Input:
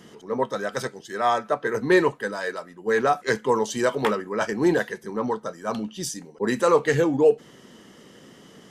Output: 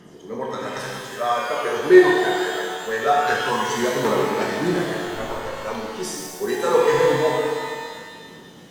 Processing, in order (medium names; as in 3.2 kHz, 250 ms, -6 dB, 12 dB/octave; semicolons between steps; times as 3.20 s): 5.00–5.52 s: comb filter that takes the minimum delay 7.4 ms; phaser 0.24 Hz, delay 2.9 ms, feedback 52%; pitch-shifted reverb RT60 1.8 s, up +12 st, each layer -8 dB, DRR -3.5 dB; trim -5 dB